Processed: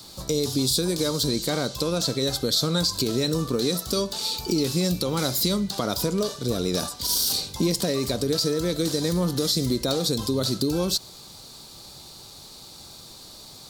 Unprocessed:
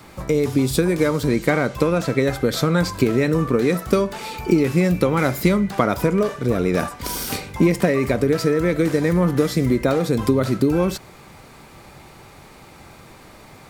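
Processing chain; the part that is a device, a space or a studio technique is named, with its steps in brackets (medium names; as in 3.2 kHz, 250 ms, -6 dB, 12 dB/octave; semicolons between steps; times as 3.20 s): over-bright horn tweeter (resonant high shelf 3 kHz +11.5 dB, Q 3; peak limiter -7 dBFS, peak gain reduction 8 dB); trim -6 dB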